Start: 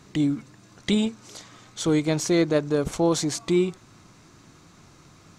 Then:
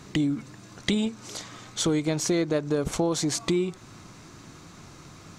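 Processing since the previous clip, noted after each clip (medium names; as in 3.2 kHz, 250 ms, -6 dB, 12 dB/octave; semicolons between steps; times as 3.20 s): compression 4:1, threshold -28 dBFS, peak gain reduction 10 dB; trim +5 dB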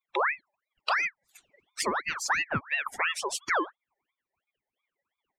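expander on every frequency bin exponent 3; ring modulator with a swept carrier 1.5 kHz, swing 55%, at 2.9 Hz; trim +4 dB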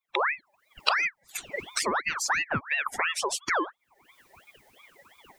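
recorder AGC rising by 53 dB/s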